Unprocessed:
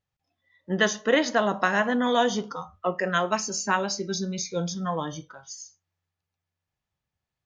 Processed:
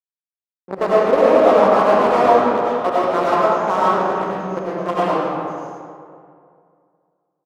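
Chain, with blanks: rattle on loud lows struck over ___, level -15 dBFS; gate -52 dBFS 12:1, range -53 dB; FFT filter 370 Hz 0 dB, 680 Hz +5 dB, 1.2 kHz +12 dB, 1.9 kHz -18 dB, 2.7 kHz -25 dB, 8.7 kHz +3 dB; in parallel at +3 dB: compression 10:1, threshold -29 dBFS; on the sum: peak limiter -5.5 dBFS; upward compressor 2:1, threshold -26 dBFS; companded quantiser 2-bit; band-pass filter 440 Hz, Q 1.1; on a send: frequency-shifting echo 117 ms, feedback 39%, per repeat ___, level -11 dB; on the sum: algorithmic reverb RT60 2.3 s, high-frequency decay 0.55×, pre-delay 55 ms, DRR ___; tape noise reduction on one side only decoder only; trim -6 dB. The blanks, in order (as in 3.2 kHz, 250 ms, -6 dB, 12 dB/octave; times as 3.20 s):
-34 dBFS, +120 Hz, -8 dB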